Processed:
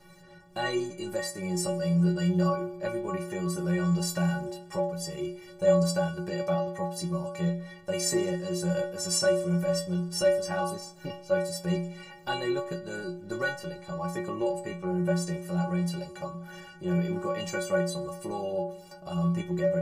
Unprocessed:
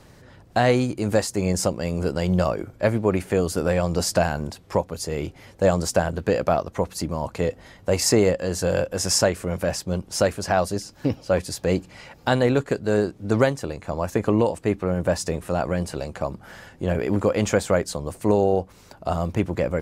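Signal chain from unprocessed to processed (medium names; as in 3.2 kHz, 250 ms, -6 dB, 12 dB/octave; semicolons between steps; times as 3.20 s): in parallel at -0.5 dB: compression, threshold -33 dBFS, peak gain reduction 18.5 dB; on the sum: inharmonic resonator 170 Hz, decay 0.74 s, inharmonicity 0.03; Schroeder reverb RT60 1.5 s, combs from 28 ms, DRR 19 dB; trim +7.5 dB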